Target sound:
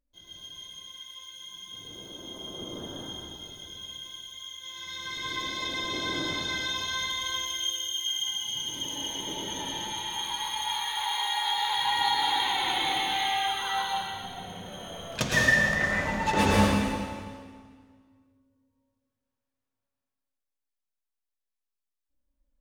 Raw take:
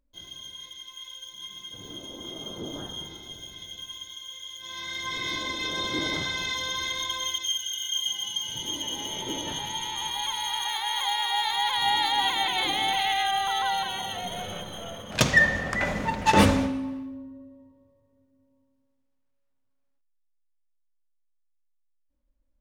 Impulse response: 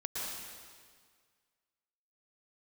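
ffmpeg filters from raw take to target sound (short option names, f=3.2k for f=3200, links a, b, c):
-filter_complex "[0:a]asettb=1/sr,asplit=3[a][b][c];[a]atrim=end=13.864[d];[b]atrim=start=13.86:end=14.64,asetpts=PTS-STARTPTS,afade=t=in:d=0.004:c=qsin,afade=t=out:st=0.776:d=0.004:c=qsin,acrossover=split=380[e][f];[f]acompressor=threshold=-47dB:ratio=2[g];[e][g]amix=inputs=2:normalize=0[h];[c]atrim=start=14.636[i];[d][h]acrossfade=d=0.004:c1=hsin:c2=qsin[j];[j][i]acrossfade=d=0.004:c1=qsin:c2=hsin[k];[1:a]atrim=start_sample=2205[l];[k][l]afir=irnorm=-1:irlink=0,volume=-4.5dB"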